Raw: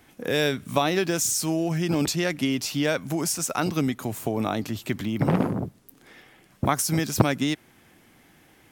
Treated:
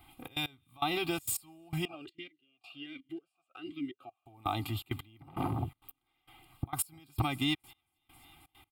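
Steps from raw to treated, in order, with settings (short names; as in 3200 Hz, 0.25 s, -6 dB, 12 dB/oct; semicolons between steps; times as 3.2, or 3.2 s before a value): limiter -14 dBFS, peak gain reduction 9.5 dB; fixed phaser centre 1700 Hz, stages 6; thin delay 0.269 s, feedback 70%, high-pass 1600 Hz, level -23 dB; step gate "xxx.x....x" 165 bpm -24 dB; comb 2.5 ms, depth 82%; 1.85–4.26 vowel sweep a-i 1.3 Hz; gain -2 dB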